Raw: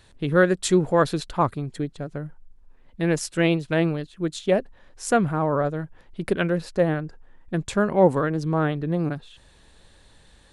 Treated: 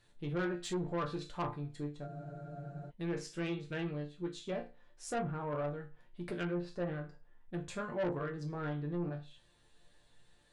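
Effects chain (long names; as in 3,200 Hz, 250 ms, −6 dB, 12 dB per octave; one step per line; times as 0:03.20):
resonators tuned to a chord A#2 major, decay 0.3 s
treble cut that deepens with the level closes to 2,300 Hz, closed at −28 dBFS
soft clipping −31 dBFS, distortion −10 dB
frozen spectrum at 0:02.09, 0.79 s
level +1 dB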